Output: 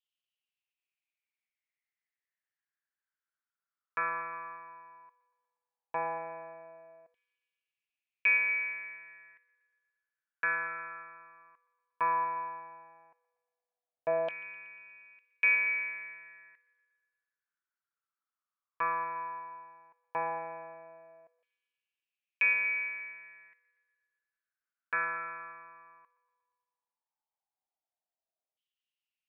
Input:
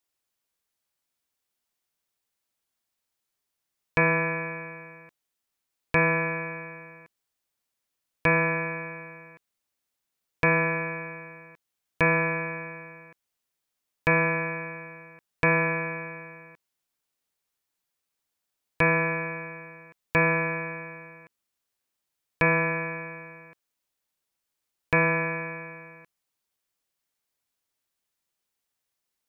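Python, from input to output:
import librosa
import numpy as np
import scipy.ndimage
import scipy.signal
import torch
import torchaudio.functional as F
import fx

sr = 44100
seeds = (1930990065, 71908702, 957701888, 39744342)

y = fx.echo_wet_bandpass(x, sr, ms=118, feedback_pct=63, hz=1500.0, wet_db=-14.5)
y = fx.filter_lfo_bandpass(y, sr, shape='saw_down', hz=0.14, low_hz=640.0, high_hz=3100.0, q=7.7)
y = y * 10.0 ** (4.0 / 20.0)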